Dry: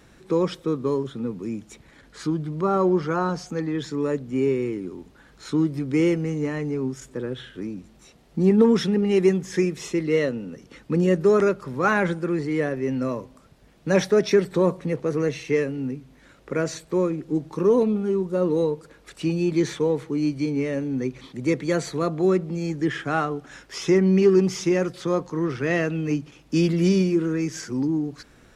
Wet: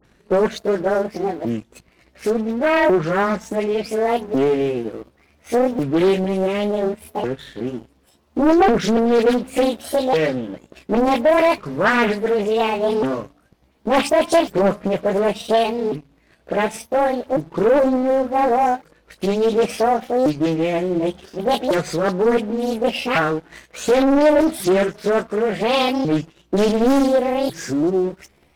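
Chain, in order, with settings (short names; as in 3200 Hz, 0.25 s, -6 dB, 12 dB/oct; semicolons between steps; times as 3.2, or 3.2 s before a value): repeated pitch sweeps +9.5 st, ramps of 1.447 s; bell 7200 Hz -4.5 dB 0.9 oct; dispersion highs, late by 48 ms, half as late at 2000 Hz; sample leveller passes 2; Doppler distortion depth 0.55 ms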